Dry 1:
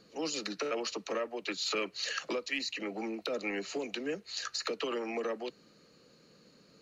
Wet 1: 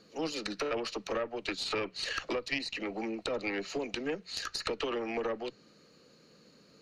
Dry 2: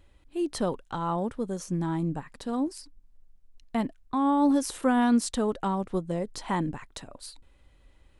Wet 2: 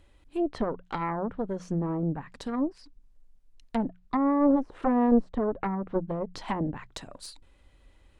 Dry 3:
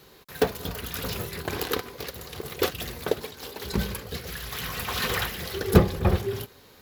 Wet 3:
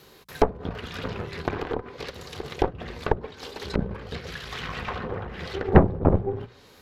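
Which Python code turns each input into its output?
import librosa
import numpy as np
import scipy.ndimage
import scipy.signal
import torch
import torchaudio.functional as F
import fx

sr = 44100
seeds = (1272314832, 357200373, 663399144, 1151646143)

y = fx.env_lowpass_down(x, sr, base_hz=700.0, full_db=-24.0)
y = fx.cheby_harmonics(y, sr, harmonics=(6,), levels_db=(-10,), full_scale_db=-3.5)
y = fx.hum_notches(y, sr, base_hz=60, count=3)
y = F.gain(torch.from_numpy(y), 1.0).numpy()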